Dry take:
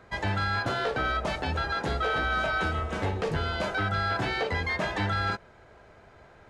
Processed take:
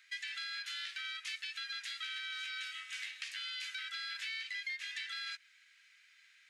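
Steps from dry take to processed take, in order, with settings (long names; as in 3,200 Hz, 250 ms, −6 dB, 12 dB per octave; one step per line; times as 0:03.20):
Butterworth high-pass 2,000 Hz 36 dB per octave
downward compressor, threshold −41 dBFS, peak gain reduction 11 dB
level +2.5 dB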